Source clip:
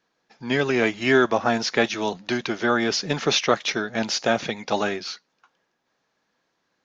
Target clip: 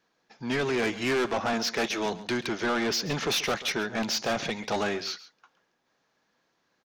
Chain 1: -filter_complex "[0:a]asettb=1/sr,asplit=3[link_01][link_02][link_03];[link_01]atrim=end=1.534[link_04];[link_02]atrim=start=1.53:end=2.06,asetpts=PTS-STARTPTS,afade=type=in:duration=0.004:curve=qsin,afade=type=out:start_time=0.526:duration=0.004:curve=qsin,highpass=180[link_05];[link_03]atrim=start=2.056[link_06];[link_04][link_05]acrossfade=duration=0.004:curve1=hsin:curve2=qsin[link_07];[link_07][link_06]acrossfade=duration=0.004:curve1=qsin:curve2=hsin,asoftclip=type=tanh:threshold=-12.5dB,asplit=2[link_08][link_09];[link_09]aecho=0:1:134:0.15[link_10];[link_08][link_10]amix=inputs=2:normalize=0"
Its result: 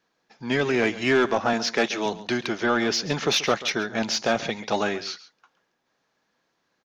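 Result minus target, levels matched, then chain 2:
soft clipping: distortion −10 dB
-filter_complex "[0:a]asettb=1/sr,asplit=3[link_01][link_02][link_03];[link_01]atrim=end=1.534[link_04];[link_02]atrim=start=1.53:end=2.06,asetpts=PTS-STARTPTS,afade=type=in:duration=0.004:curve=qsin,afade=type=out:start_time=0.526:duration=0.004:curve=qsin,highpass=180[link_05];[link_03]atrim=start=2.056[link_06];[link_04][link_05]acrossfade=duration=0.004:curve1=hsin:curve2=qsin[link_07];[link_07][link_06]acrossfade=duration=0.004:curve1=qsin:curve2=hsin,asoftclip=type=tanh:threshold=-23dB,asplit=2[link_08][link_09];[link_09]aecho=0:1:134:0.15[link_10];[link_08][link_10]amix=inputs=2:normalize=0"

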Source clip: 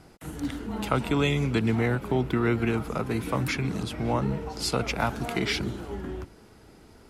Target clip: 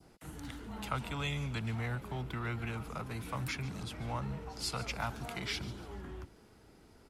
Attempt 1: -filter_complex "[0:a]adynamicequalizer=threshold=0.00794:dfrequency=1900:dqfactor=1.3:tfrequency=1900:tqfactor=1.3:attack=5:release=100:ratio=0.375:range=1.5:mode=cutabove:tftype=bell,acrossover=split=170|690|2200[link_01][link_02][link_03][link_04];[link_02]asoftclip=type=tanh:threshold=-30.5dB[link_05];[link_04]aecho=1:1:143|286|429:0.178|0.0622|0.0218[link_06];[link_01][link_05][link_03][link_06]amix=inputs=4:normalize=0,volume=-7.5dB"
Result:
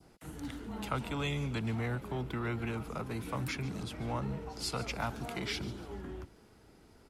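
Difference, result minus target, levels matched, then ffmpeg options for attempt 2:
soft clipping: distortion −6 dB
-filter_complex "[0:a]adynamicequalizer=threshold=0.00794:dfrequency=1900:dqfactor=1.3:tfrequency=1900:tqfactor=1.3:attack=5:release=100:ratio=0.375:range=1.5:mode=cutabove:tftype=bell,acrossover=split=170|690|2200[link_01][link_02][link_03][link_04];[link_02]asoftclip=type=tanh:threshold=-41.5dB[link_05];[link_04]aecho=1:1:143|286|429:0.178|0.0622|0.0218[link_06];[link_01][link_05][link_03][link_06]amix=inputs=4:normalize=0,volume=-7.5dB"

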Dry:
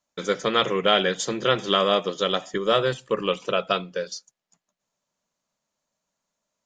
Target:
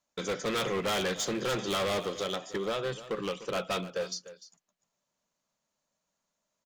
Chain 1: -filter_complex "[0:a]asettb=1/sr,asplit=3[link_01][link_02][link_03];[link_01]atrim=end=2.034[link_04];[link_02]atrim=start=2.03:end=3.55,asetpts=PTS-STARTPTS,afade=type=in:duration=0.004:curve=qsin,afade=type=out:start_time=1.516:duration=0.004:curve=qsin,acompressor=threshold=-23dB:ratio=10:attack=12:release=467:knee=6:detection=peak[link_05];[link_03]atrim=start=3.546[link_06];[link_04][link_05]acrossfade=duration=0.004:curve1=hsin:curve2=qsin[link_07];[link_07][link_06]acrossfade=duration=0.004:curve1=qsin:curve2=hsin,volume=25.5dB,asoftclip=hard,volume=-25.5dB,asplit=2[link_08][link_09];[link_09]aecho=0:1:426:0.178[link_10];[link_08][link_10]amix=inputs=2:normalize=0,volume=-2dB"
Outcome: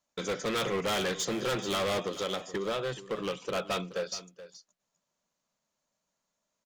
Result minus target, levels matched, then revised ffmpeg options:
echo 128 ms late
-filter_complex "[0:a]asettb=1/sr,asplit=3[link_01][link_02][link_03];[link_01]atrim=end=2.034[link_04];[link_02]atrim=start=2.03:end=3.55,asetpts=PTS-STARTPTS,afade=type=in:duration=0.004:curve=qsin,afade=type=out:start_time=1.516:duration=0.004:curve=qsin,acompressor=threshold=-23dB:ratio=10:attack=12:release=467:knee=6:detection=peak[link_05];[link_03]atrim=start=3.546[link_06];[link_04][link_05]acrossfade=duration=0.004:curve1=hsin:curve2=qsin[link_07];[link_07][link_06]acrossfade=duration=0.004:curve1=qsin:curve2=hsin,volume=25.5dB,asoftclip=hard,volume=-25.5dB,asplit=2[link_08][link_09];[link_09]aecho=0:1:298:0.178[link_10];[link_08][link_10]amix=inputs=2:normalize=0,volume=-2dB"

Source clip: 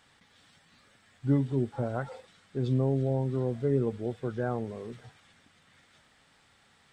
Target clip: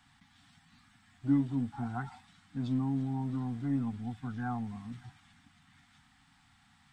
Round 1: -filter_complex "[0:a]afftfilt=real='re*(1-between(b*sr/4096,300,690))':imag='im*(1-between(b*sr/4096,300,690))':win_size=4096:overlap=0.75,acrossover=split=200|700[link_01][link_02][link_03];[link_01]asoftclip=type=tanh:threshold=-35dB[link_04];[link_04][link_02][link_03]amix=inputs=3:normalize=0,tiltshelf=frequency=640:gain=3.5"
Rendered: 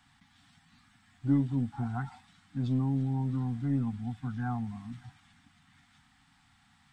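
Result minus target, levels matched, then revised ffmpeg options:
soft clipping: distortion −5 dB
-filter_complex "[0:a]afftfilt=real='re*(1-between(b*sr/4096,300,690))':imag='im*(1-between(b*sr/4096,300,690))':win_size=4096:overlap=0.75,acrossover=split=200|700[link_01][link_02][link_03];[link_01]asoftclip=type=tanh:threshold=-44.5dB[link_04];[link_04][link_02][link_03]amix=inputs=3:normalize=0,tiltshelf=frequency=640:gain=3.5"

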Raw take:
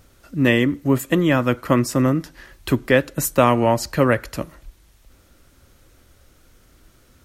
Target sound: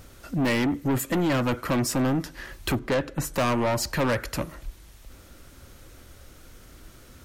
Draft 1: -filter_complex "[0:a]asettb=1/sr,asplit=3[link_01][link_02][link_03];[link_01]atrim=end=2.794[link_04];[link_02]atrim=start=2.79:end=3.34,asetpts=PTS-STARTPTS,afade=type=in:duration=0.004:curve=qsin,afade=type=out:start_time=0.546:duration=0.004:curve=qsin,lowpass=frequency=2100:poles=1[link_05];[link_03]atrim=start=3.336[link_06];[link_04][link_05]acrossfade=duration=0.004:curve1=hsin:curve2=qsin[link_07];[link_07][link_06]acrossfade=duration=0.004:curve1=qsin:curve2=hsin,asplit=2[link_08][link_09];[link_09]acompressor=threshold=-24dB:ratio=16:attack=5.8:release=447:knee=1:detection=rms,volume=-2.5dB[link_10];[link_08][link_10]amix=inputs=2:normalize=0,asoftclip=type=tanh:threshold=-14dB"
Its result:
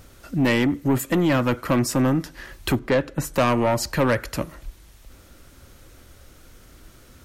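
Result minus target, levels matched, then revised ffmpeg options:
soft clipping: distortion −4 dB
-filter_complex "[0:a]asettb=1/sr,asplit=3[link_01][link_02][link_03];[link_01]atrim=end=2.794[link_04];[link_02]atrim=start=2.79:end=3.34,asetpts=PTS-STARTPTS,afade=type=in:duration=0.004:curve=qsin,afade=type=out:start_time=0.546:duration=0.004:curve=qsin,lowpass=frequency=2100:poles=1[link_05];[link_03]atrim=start=3.336[link_06];[link_04][link_05]acrossfade=duration=0.004:curve1=hsin:curve2=qsin[link_07];[link_07][link_06]acrossfade=duration=0.004:curve1=qsin:curve2=hsin,asplit=2[link_08][link_09];[link_09]acompressor=threshold=-24dB:ratio=16:attack=5.8:release=447:knee=1:detection=rms,volume=-2.5dB[link_10];[link_08][link_10]amix=inputs=2:normalize=0,asoftclip=type=tanh:threshold=-20.5dB"

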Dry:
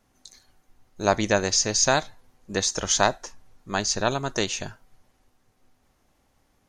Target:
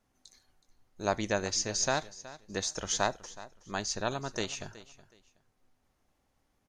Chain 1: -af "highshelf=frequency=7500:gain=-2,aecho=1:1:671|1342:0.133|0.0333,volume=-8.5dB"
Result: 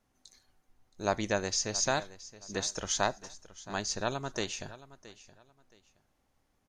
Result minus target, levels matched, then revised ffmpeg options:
echo 300 ms late
-af "highshelf=frequency=7500:gain=-2,aecho=1:1:371|742:0.133|0.0333,volume=-8.5dB"

